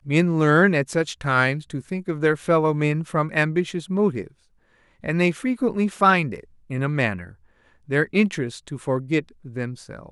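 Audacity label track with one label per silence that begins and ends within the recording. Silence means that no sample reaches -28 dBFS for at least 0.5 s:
4.220000	5.040000	silence
7.220000	7.910000	silence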